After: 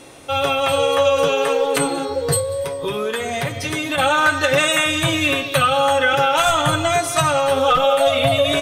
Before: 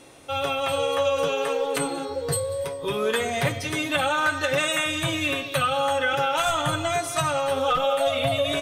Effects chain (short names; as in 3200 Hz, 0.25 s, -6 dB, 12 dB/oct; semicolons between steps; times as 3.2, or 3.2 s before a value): 2.4–3.98 compressor, threshold -27 dBFS, peak gain reduction 8 dB; gain +7 dB